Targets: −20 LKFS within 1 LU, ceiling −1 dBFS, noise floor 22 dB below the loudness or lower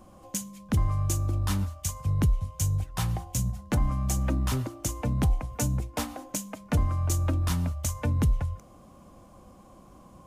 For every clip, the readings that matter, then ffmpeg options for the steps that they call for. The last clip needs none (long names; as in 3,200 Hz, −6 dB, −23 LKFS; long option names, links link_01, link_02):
integrated loudness −29.0 LKFS; sample peak −15.5 dBFS; target loudness −20.0 LKFS
→ -af "volume=9dB"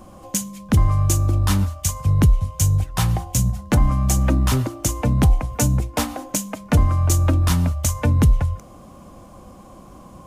integrated loudness −20.0 LKFS; sample peak −6.5 dBFS; background noise floor −44 dBFS